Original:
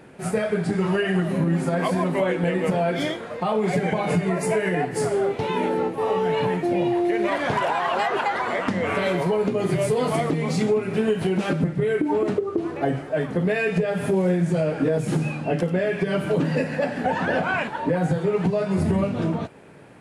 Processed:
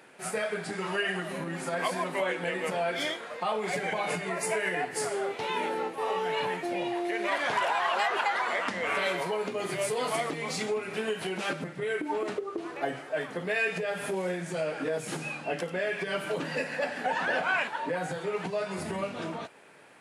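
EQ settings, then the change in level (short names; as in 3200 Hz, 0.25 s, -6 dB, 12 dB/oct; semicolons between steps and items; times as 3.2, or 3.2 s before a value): HPF 1200 Hz 6 dB/oct; 0.0 dB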